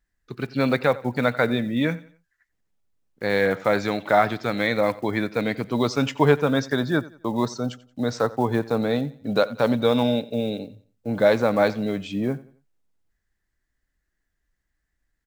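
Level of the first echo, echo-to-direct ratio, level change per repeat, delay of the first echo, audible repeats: -19.5 dB, -19.0 dB, -9.0 dB, 89 ms, 2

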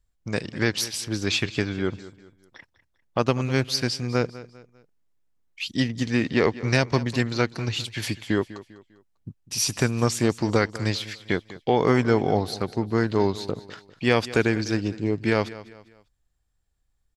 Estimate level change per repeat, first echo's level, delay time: -8.5 dB, -17.0 dB, 199 ms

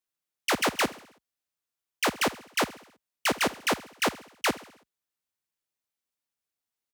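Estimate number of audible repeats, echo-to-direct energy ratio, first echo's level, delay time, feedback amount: 4, -16.5 dB, -18.0 dB, 65 ms, 55%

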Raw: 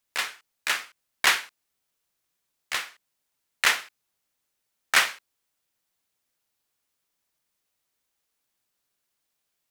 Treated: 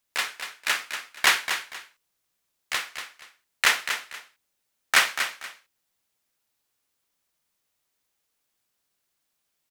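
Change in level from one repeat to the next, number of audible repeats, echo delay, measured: -12.0 dB, 2, 238 ms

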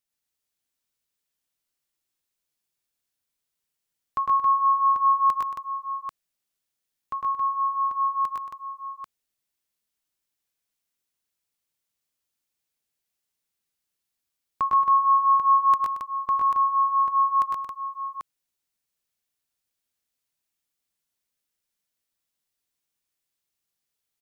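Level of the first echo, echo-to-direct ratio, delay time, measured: -3.5 dB, 1.5 dB, 105 ms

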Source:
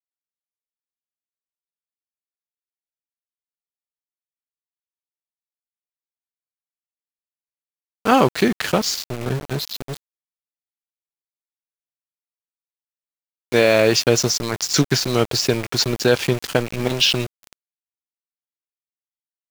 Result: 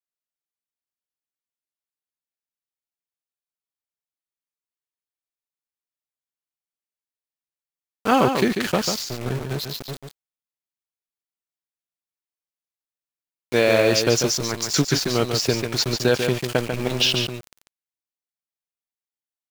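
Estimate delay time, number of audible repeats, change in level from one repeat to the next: 143 ms, 1, no regular repeats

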